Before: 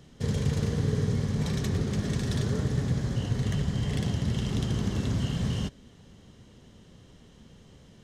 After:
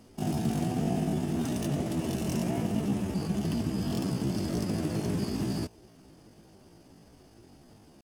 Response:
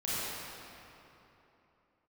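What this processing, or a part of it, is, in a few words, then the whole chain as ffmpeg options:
chipmunk voice: -af "asetrate=70004,aresample=44100,atempo=0.629961,volume=-2dB"

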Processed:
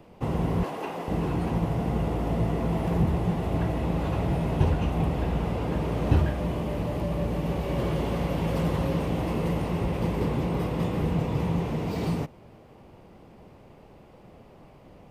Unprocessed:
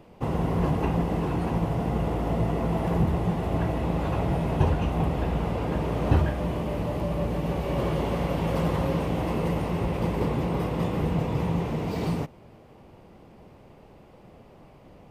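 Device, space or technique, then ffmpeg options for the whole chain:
one-band saturation: -filter_complex "[0:a]asettb=1/sr,asplit=3[a][b][c];[a]atrim=end=0.634[d];[b]atrim=start=0.63:end=1.08,asetpts=PTS-STARTPTS,afade=t=in:d=0.004:c=qsin,afade=t=out:st=0.446:d=0.004:c=qsin,highpass=450[e];[c]atrim=start=1.076[f];[d][e]acrossfade=d=0.004:c1=hsin:c2=qsin[g];[g][f]acrossfade=d=0.004:c1=qsin:c2=hsin,acrossover=split=440|2400[h][i][j];[i]asoftclip=type=tanh:threshold=-31dB[k];[h][k][j]amix=inputs=3:normalize=0"

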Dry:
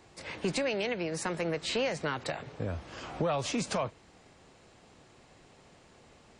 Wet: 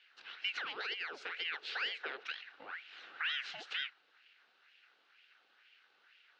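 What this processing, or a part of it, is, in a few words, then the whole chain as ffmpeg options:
voice changer toy: -filter_complex "[0:a]aeval=exprs='val(0)*sin(2*PI*1500*n/s+1500*0.75/2.1*sin(2*PI*2.1*n/s))':c=same,highpass=560,equalizer=f=620:t=q:w=4:g=-8,equalizer=f=1k:t=q:w=4:g=-9,equalizer=f=1.5k:t=q:w=4:g=8,equalizer=f=2.8k:t=q:w=4:g=7,equalizer=f=4k:t=q:w=4:g=5,lowpass=f=4.7k:w=0.5412,lowpass=f=4.7k:w=1.3066,asettb=1/sr,asplit=3[a][b][c];[a]atrim=end=0.664[d];[b]atrim=start=0.66:end=2.25,asetpts=PTS-STARTPTS,afade=t=in:d=0.004:c=qsin,afade=t=out:st=1.586:d=0.004:c=qsin,equalizer=f=430:w=2.5:g=14[e];[c]atrim=start=2.246[f];[d][e]acrossfade=d=0.004:c1=hsin:c2=qsin[g];[g][f]acrossfade=d=0.004:c1=qsin:c2=hsin,volume=-8.5dB"

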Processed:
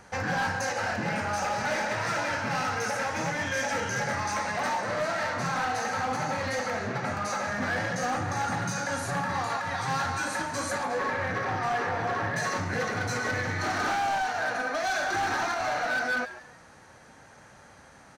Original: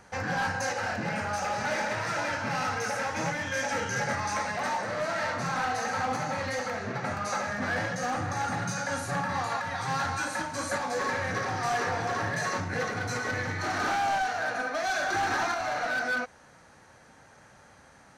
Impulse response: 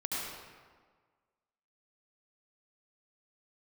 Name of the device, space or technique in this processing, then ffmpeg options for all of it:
limiter into clipper: -filter_complex "[0:a]asettb=1/sr,asplit=3[a][b][c];[a]atrim=end=10.834[d];[b]atrim=start=10.83:end=12.36,asetpts=PTS-STARTPTS,afade=t=in:d=0.004:c=qsin,afade=t=out:st=1.526:d=0.004:c=qsin,bass=f=250:g=-1,treble=f=4k:g=-11[e];[c]atrim=start=12.356[f];[d][e]acrossfade=d=0.004:c1=hsin:c2=qsin[g];[g][f]acrossfade=d=0.004:c1=qsin:c2=hsin,asplit=4[h][i][j][k];[i]adelay=140,afreqshift=120,volume=-16dB[l];[j]adelay=280,afreqshift=240,volume=-25.6dB[m];[k]adelay=420,afreqshift=360,volume=-35.3dB[n];[h][l][m][n]amix=inputs=4:normalize=0,alimiter=level_in=0.5dB:limit=-24dB:level=0:latency=1:release=97,volume=-0.5dB,asoftclip=type=hard:threshold=-26dB,volume=2.5dB"

